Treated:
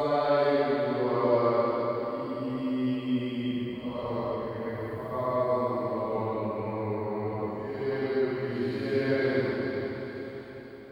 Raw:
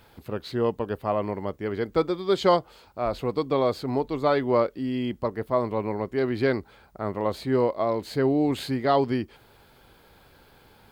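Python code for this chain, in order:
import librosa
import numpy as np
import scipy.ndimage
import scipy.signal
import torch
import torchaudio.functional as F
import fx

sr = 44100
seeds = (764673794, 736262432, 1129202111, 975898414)

y = fx.paulstretch(x, sr, seeds[0], factor=4.1, window_s=0.25, from_s=4.23)
y = fx.echo_diffused(y, sr, ms=474, feedback_pct=47, wet_db=-7.0)
y = F.gain(torch.from_numpy(y), -4.5).numpy()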